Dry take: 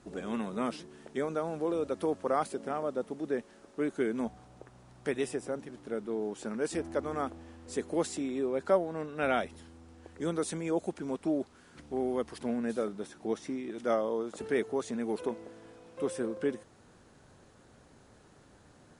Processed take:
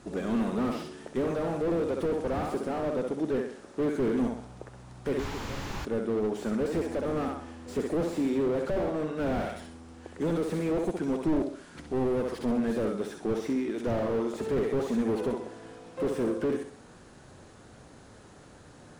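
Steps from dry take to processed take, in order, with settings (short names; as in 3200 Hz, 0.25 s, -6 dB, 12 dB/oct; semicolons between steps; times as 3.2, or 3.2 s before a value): flutter echo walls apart 11.2 m, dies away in 0.49 s; painted sound noise, 5.19–5.85, 770–7600 Hz -21 dBFS; slew limiter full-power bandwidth 11 Hz; gain +6.5 dB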